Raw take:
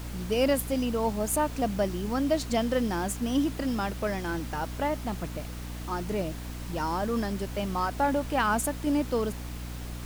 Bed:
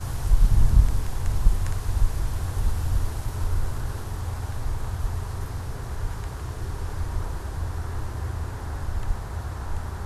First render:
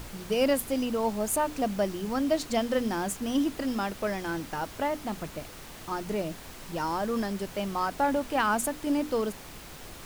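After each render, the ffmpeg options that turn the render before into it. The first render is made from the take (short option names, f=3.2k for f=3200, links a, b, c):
-af "bandreject=f=60:t=h:w=6,bandreject=f=120:t=h:w=6,bandreject=f=180:t=h:w=6,bandreject=f=240:t=h:w=6,bandreject=f=300:t=h:w=6"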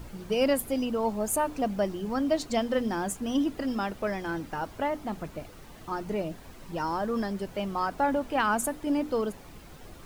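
-af "afftdn=nr=9:nf=-45"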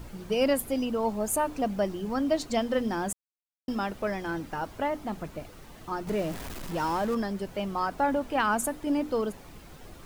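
-filter_complex "[0:a]asettb=1/sr,asplit=3[a][b][c];[a]atrim=end=6.074[d];[b]atrim=start=6.07:end=7.15,asetpts=PTS-STARTPTS,afade=t=in:d=0.004:c=qsin,afade=t=out:st=1.076:d=0.004:c=qsin,aeval=exprs='val(0)+0.5*0.0178*sgn(val(0))':c=same[e];[c]atrim=start=7.146[f];[d][e]acrossfade=d=0.004:c1=hsin:c2=qsin[g];[g][f]acrossfade=d=0.004:c1=qsin:c2=hsin,asplit=3[h][i][j];[h]atrim=end=3.13,asetpts=PTS-STARTPTS,afade=t=out:st=3.126:d=0.004:c=hsin[k];[i]atrim=start=3.13:end=3.68,asetpts=PTS-STARTPTS,volume=0[l];[j]atrim=start=3.68,asetpts=PTS-STARTPTS,afade=t=in:d=0.004:c=hsin[m];[k][l][m]concat=n=3:v=0:a=1"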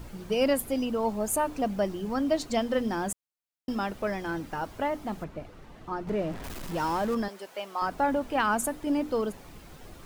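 -filter_complex "[0:a]asettb=1/sr,asplit=3[a][b][c];[a]atrim=end=5.244[d];[b]atrim=start=5.24:end=6.44,asetpts=PTS-STARTPTS,afade=t=in:d=0.004:c=qsin,afade=t=out:st=1.196:d=0.004:c=qsin,lowpass=f=2.2k:p=1[e];[c]atrim=start=6.436[f];[d][e]acrossfade=d=0.004:c1=hsin:c2=qsin[g];[g][f]acrossfade=d=0.004:c1=qsin:c2=hsin,asettb=1/sr,asplit=3[h][i][j];[h]atrim=end=7.284[k];[i]atrim=start=7.28:end=7.82,asetpts=PTS-STARTPTS,afade=t=in:d=0.004:c=qsin,afade=t=out:st=0.536:d=0.004:c=qsin,highpass=570[l];[j]atrim=start=7.816[m];[k][l]acrossfade=d=0.004:c1=hsin:c2=qsin[n];[n][m]acrossfade=d=0.004:c1=qsin:c2=hsin"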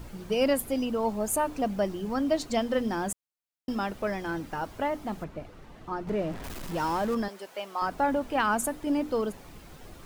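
-af anull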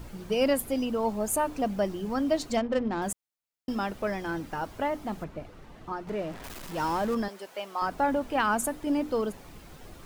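-filter_complex "[0:a]asettb=1/sr,asplit=3[a][b][c];[a]atrim=end=2.574[d];[b]atrim=start=2.57:end=3.02,asetpts=PTS-STARTPTS,afade=t=in:d=0.004:c=qsin,afade=t=out:st=0.446:d=0.004:c=qsin,adynamicsmooth=sensitivity=3.5:basefreq=770[e];[c]atrim=start=3.016[f];[d][e]acrossfade=d=0.004:c1=hsin:c2=qsin[g];[g][f]acrossfade=d=0.004:c1=qsin:c2=hsin,asettb=1/sr,asplit=3[h][i][j];[h]atrim=end=5.924[k];[i]atrim=start=5.92:end=6.78,asetpts=PTS-STARTPTS,afade=t=in:d=0.004:c=qsin,afade=t=out:st=0.856:d=0.004:c=qsin,lowshelf=f=420:g=-6[l];[j]atrim=start=6.776[m];[k][l]acrossfade=d=0.004:c1=hsin:c2=qsin[n];[n][m]acrossfade=d=0.004:c1=qsin:c2=hsin"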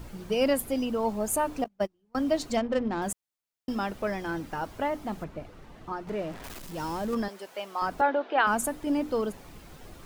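-filter_complex "[0:a]asettb=1/sr,asplit=3[a][b][c];[a]atrim=end=1.644[d];[b]atrim=start=1.64:end=2.15,asetpts=PTS-STARTPTS,afade=t=in:d=0.004:c=qsin,afade=t=out:st=0.506:d=0.004:c=qsin,agate=range=-37dB:threshold=-26dB:ratio=16:release=100:detection=peak[e];[c]atrim=start=2.146[f];[d][e]acrossfade=d=0.004:c1=hsin:c2=qsin[g];[g][f]acrossfade=d=0.004:c1=qsin:c2=hsin,asettb=1/sr,asplit=3[h][i][j];[h]atrim=end=6.594[k];[i]atrim=start=6.59:end=7.13,asetpts=PTS-STARTPTS,afade=t=in:d=0.004:c=qsin,afade=t=out:st=0.536:d=0.004:c=qsin,equalizer=f=1.3k:t=o:w=2.9:g=-6.5[l];[j]atrim=start=7.126[m];[k][l]acrossfade=d=0.004:c1=hsin:c2=qsin[n];[n][m]acrossfade=d=0.004:c1=qsin:c2=hsin,asettb=1/sr,asplit=3[o][p][q];[o]atrim=end=8.014[r];[p]atrim=start=8.01:end=8.47,asetpts=PTS-STARTPTS,afade=t=in:d=0.004:c=qsin,afade=t=out:st=0.456:d=0.004:c=qsin,highpass=f=330:w=0.5412,highpass=f=330:w=1.3066,equalizer=f=380:t=q:w=4:g=6,equalizer=f=710:t=q:w=4:g=6,equalizer=f=1.5k:t=q:w=4:g=6,equalizer=f=3.7k:t=q:w=4:g=4,lowpass=f=4.1k:w=0.5412,lowpass=f=4.1k:w=1.3066[s];[q]atrim=start=8.466[t];[r][s]acrossfade=d=0.004:c1=hsin:c2=qsin[u];[u][t]acrossfade=d=0.004:c1=qsin:c2=hsin"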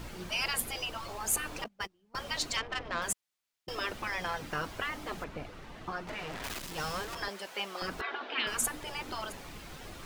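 -af "afftfilt=real='re*lt(hypot(re,im),0.1)':imag='im*lt(hypot(re,im),0.1)':win_size=1024:overlap=0.75,equalizer=f=2.9k:w=0.35:g=6.5"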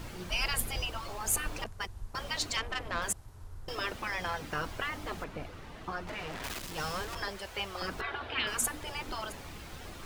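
-filter_complex "[1:a]volume=-21.5dB[a];[0:a][a]amix=inputs=2:normalize=0"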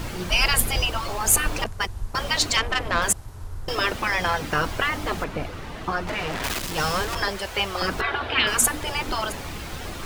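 -af "volume=11.5dB"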